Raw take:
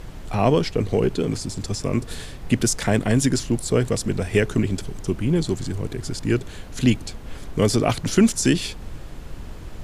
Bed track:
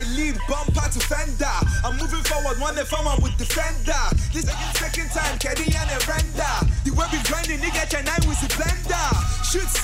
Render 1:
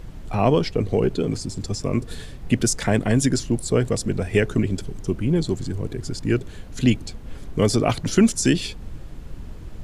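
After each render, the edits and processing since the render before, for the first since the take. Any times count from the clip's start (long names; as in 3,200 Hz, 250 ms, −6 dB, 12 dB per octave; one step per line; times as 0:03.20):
broadband denoise 6 dB, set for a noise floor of −37 dBFS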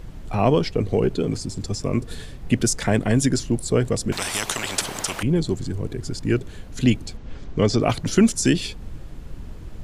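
0:04.12–0:05.23: every bin compressed towards the loudest bin 10 to 1
0:07.17–0:07.81: low-pass filter 6,500 Hz 24 dB per octave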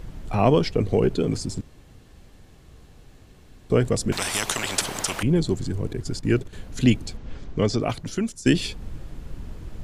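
0:01.61–0:03.70: fill with room tone
0:05.93–0:06.53: noise gate −33 dBFS, range −9 dB
0:07.24–0:08.46: fade out, to −17 dB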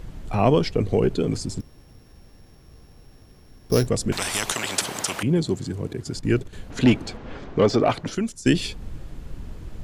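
0:01.60–0:03.87: samples sorted by size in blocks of 8 samples
0:04.53–0:06.16: high-pass filter 100 Hz
0:06.70–0:08.15: mid-hump overdrive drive 20 dB, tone 1,100 Hz, clips at −5 dBFS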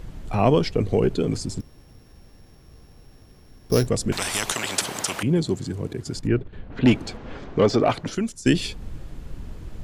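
0:06.27–0:06.86: high-frequency loss of the air 390 metres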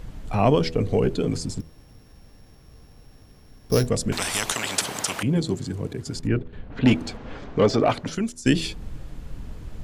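notch filter 360 Hz, Q 12
hum removal 81.15 Hz, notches 8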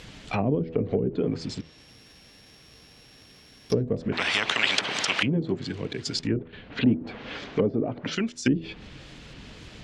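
treble cut that deepens with the level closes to 330 Hz, closed at −16.5 dBFS
meter weighting curve D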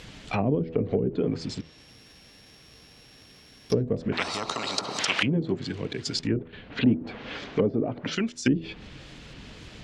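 0:04.23–0:04.99: gain on a spectral selection 1,400–3,700 Hz −14 dB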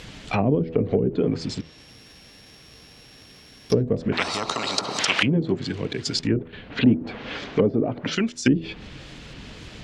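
level +4 dB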